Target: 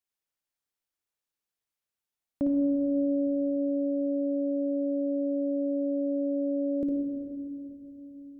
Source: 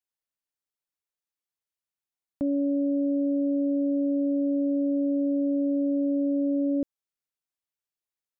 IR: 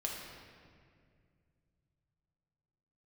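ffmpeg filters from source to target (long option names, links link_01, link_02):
-filter_complex "[0:a]asplit=2[link_01][link_02];[1:a]atrim=start_sample=2205,asetrate=33075,aresample=44100,adelay=56[link_03];[link_02][link_03]afir=irnorm=-1:irlink=0,volume=-5dB[link_04];[link_01][link_04]amix=inputs=2:normalize=0"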